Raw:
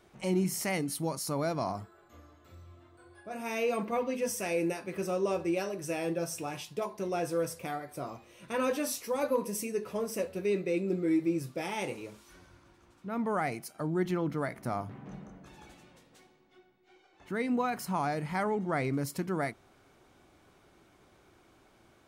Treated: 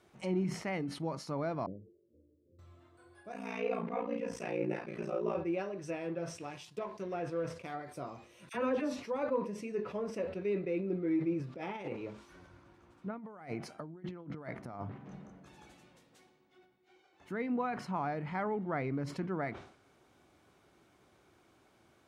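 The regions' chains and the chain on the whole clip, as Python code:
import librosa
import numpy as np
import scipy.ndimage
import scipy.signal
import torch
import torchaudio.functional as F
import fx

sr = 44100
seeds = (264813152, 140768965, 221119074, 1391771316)

y = fx.chain(x, sr, fx.steep_lowpass(hz=540.0, slope=96),
    fx.low_shelf(hz=260.0, db=-10.0), at=(1.66, 2.59))
y = fx.chain(y, sr, fx.ring_mod(carrier_hz=29.0),
    fx.doubler(ms=35.0, db=-2.5), at=(3.31, 5.36))
y = fx.chain(y, sr, fx.law_mismatch(coded='A'),
    fx.notch(hz=810.0, q=13.0), at=(5.95, 7.74))
y = fx.chain(y, sr, fx.low_shelf(hz=420.0, db=4.0),
    fx.dispersion(late='lows', ms=48.0, hz=1200.0), at=(8.49, 9.05))
y = fx.chain(y, sr, fx.over_compress(threshold_db=-37.0, ratio=-0.5),
    fx.high_shelf(hz=3400.0, db=-11.0), at=(11.54, 14.92))
y = scipy.signal.sosfilt(scipy.signal.butter(2, 62.0, 'highpass', fs=sr, output='sos'), y)
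y = fx.env_lowpass_down(y, sr, base_hz=2400.0, full_db=-30.5)
y = fx.sustainer(y, sr, db_per_s=100.0)
y = y * librosa.db_to_amplitude(-4.0)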